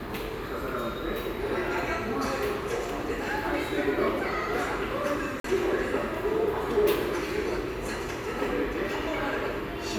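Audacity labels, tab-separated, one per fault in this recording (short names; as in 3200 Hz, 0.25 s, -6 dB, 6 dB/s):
5.400000	5.440000	gap 43 ms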